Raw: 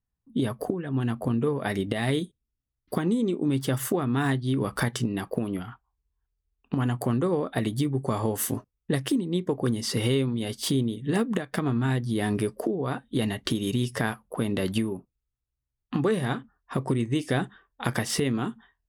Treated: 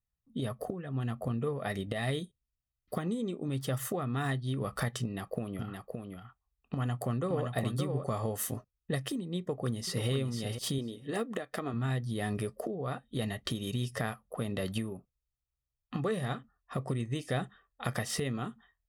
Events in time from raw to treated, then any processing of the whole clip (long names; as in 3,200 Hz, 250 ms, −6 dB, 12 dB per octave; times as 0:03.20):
0:05.02–0:08.04: single-tap delay 569 ms −5 dB
0:09.38–0:10.09: delay throw 490 ms, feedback 10%, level −8 dB
0:10.78–0:11.74: low shelf with overshoot 220 Hz −7 dB, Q 1.5
whole clip: comb filter 1.6 ms, depth 47%; level −7 dB